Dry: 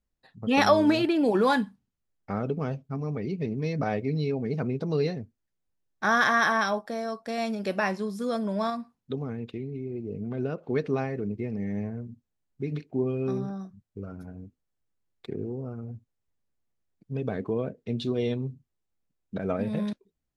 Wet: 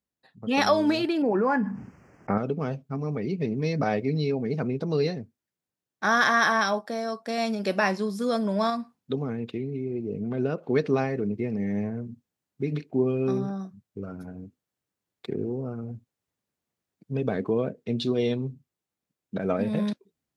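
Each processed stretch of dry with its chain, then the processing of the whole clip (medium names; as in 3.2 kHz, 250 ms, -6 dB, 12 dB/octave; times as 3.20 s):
1.22–2.38 s: Butterworth band-stop 3.7 kHz, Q 1.1 + distance through air 200 m + level flattener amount 70%
whole clip: gain riding within 3 dB 2 s; high-pass 120 Hz; dynamic bell 4.8 kHz, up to +4 dB, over -52 dBFS, Q 2.1; trim +1.5 dB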